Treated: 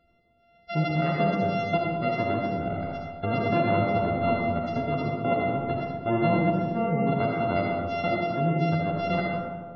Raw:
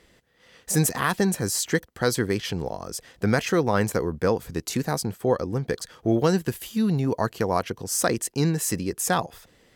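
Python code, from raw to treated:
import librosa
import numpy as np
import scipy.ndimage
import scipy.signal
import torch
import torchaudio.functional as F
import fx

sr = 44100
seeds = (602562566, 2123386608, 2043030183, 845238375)

p1 = np.r_[np.sort(x[:len(x) // 64 * 64].reshape(-1, 64), axis=1).ravel(), x[len(x) // 64 * 64:]]
p2 = fx.high_shelf(p1, sr, hz=6100.0, db=-12.0)
p3 = np.where(np.abs(p2) >= 10.0 ** (-24.5 / 20.0), p2, 0.0)
p4 = p2 + (p3 * 10.0 ** (-10.0 / 20.0))
p5 = fx.spec_gate(p4, sr, threshold_db=-20, keep='strong')
p6 = fx.doubler(p5, sr, ms=12.0, db=-8.5)
p7 = fx.rev_freeverb(p6, sr, rt60_s=1.7, hf_ratio=0.35, predelay_ms=25, drr_db=-2.0)
y = p7 * 10.0 ** (-7.5 / 20.0)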